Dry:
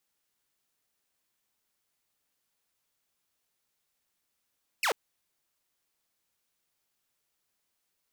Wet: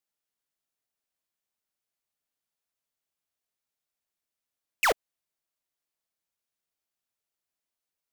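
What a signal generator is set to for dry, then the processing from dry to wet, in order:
laser zap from 2900 Hz, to 380 Hz, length 0.09 s saw, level -22 dB
bell 650 Hz +4.5 dB 0.22 oct; sample leveller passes 5

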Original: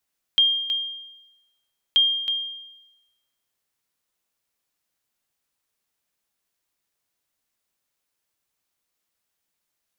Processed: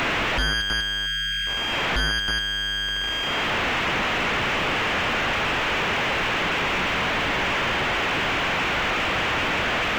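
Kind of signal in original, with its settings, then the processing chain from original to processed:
sonar ping 3210 Hz, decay 1.01 s, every 1.58 s, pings 2, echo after 0.32 s, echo -8.5 dB -11.5 dBFS
delta modulation 16 kbps, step -25.5 dBFS; spectral gain 1.06–1.47, 240–1300 Hz -24 dB; sample leveller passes 3

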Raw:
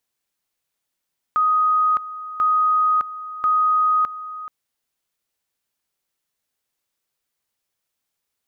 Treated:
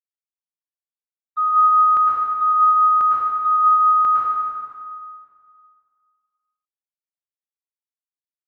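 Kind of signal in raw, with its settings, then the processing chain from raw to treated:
two-level tone 1250 Hz -14.5 dBFS, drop 15 dB, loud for 0.61 s, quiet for 0.43 s, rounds 3
gate -19 dBFS, range -45 dB; plate-style reverb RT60 2.1 s, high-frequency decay 0.85×, pre-delay 95 ms, DRR -6 dB

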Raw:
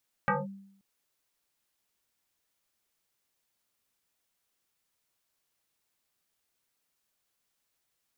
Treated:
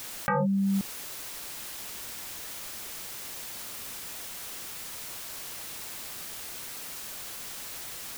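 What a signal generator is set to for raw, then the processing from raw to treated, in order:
FM tone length 0.53 s, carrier 196 Hz, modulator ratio 1.76, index 5, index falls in 0.19 s linear, decay 0.72 s, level -21 dB
fast leveller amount 100%

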